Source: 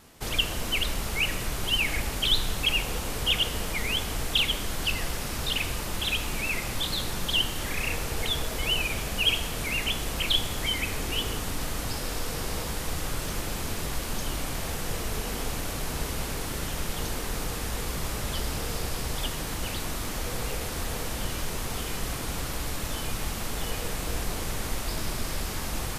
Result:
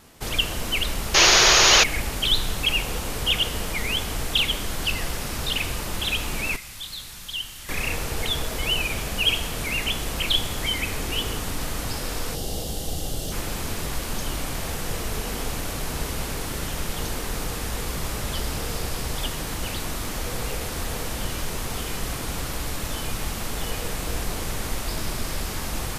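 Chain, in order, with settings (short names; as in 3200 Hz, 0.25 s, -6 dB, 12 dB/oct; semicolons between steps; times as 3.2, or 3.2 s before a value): 1.14–1.84 painted sound noise 320–6900 Hz -18 dBFS; 6.56–7.69 passive tone stack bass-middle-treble 5-5-5; 12.35–13.32 spectral gain 850–2700 Hz -12 dB; gain +2.5 dB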